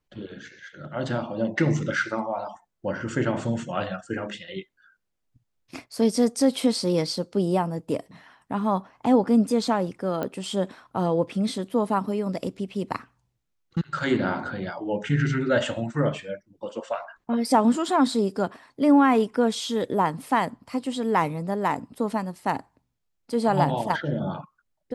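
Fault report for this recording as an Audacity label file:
10.230000	10.230000	pop -16 dBFS

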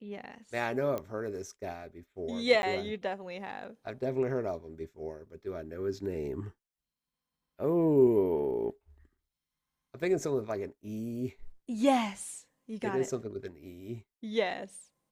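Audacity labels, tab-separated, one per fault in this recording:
0.980000	0.980000	pop -22 dBFS
2.620000	2.630000	dropout

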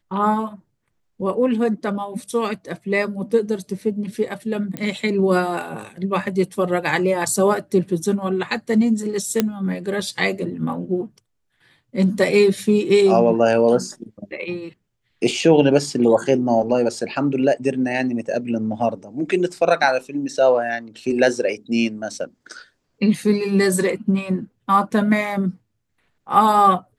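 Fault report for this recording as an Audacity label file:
4.770000	4.770000	pop -13 dBFS
9.400000	9.400000	pop -3 dBFS

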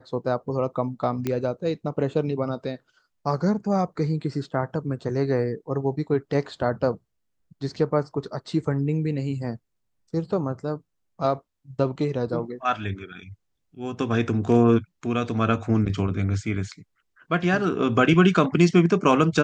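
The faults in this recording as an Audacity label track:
1.270000	1.270000	pop -13 dBFS

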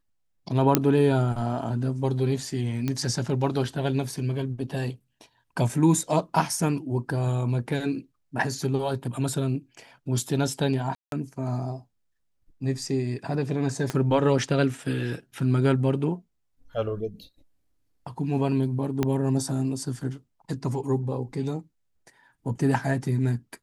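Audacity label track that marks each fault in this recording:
0.750000	0.750000	pop -3 dBFS
2.880000	2.880000	pop -14 dBFS
10.950000	11.120000	dropout 172 ms
13.900000	13.900000	pop -14 dBFS
19.030000	19.030000	pop -11 dBFS

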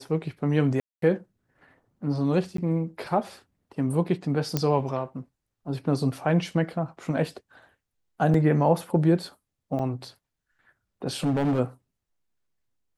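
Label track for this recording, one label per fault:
0.800000	1.020000	dropout 223 ms
2.570000	2.580000	dropout 13 ms
4.570000	4.570000	pop -10 dBFS
8.340000	8.340000	dropout 3.2 ms
9.790000	9.790000	dropout 3.5 ms
11.230000	11.600000	clipped -20.5 dBFS

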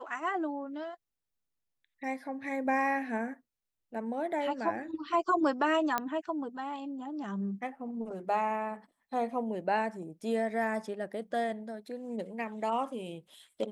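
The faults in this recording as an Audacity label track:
5.980000	5.980000	pop -15 dBFS

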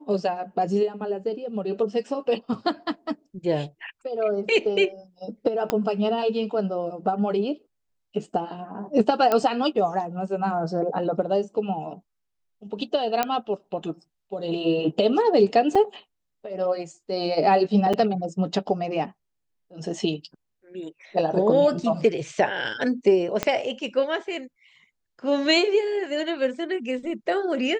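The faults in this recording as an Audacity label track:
5.700000	5.700000	pop -9 dBFS
9.320000	9.320000	pop -9 dBFS
13.230000	13.230000	pop -8 dBFS
15.750000	15.760000	dropout 5 ms
17.930000	17.940000	dropout 6 ms
23.430000	23.430000	pop -8 dBFS

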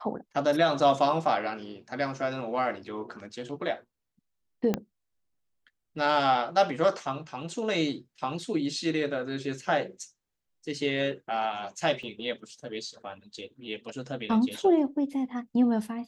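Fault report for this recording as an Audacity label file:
4.740000	4.740000	pop -13 dBFS
12.030000	12.030000	dropout 2.8 ms

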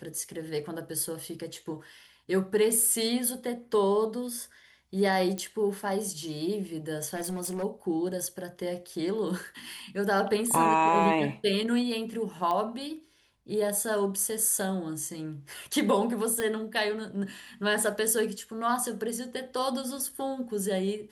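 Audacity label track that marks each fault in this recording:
5.380000	5.380000	pop -20 dBFS
7.150000	7.640000	clipped -29 dBFS
12.510000	12.510000	pop -19 dBFS
16.400000	16.400000	pop -16 dBFS

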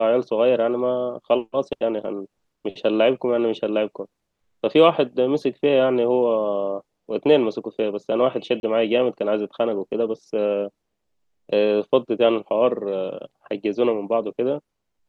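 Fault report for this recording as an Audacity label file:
8.600000	8.630000	dropout 31 ms

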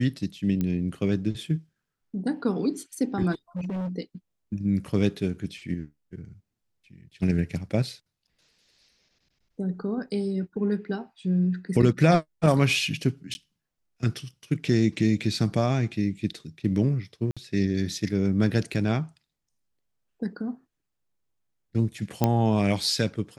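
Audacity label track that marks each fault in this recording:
0.610000	0.610000	pop -16 dBFS
3.320000	3.890000	clipped -28 dBFS
13.340000	13.350000	dropout 10 ms
17.310000	17.370000	dropout 56 ms
22.240000	22.240000	pop -8 dBFS

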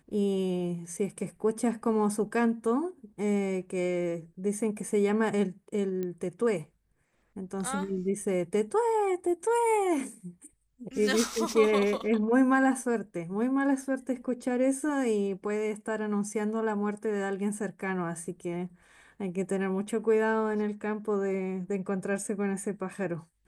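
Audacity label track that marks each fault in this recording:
6.030000	6.030000	pop -22 dBFS

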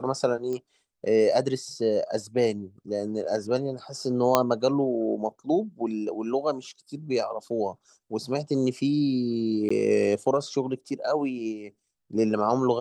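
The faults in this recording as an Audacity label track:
0.530000	0.530000	pop -22 dBFS
4.350000	4.350000	pop -4 dBFS
9.690000	9.710000	dropout 15 ms

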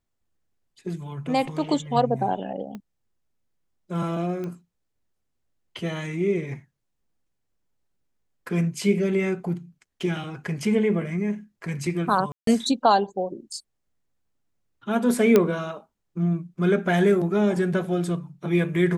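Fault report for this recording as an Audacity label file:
2.750000	2.750000	pop -24 dBFS
4.440000	4.440000	pop -22 dBFS
12.320000	12.470000	dropout 153 ms
15.360000	15.360000	pop -5 dBFS

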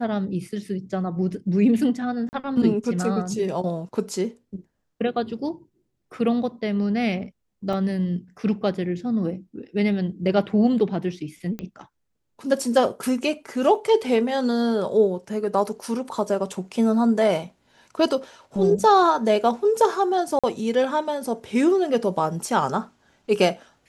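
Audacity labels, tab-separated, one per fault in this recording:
2.290000	2.330000	dropout 39 ms
7.730000	7.730000	dropout 3 ms
11.590000	11.590000	pop -19 dBFS
20.390000	20.440000	dropout 46 ms

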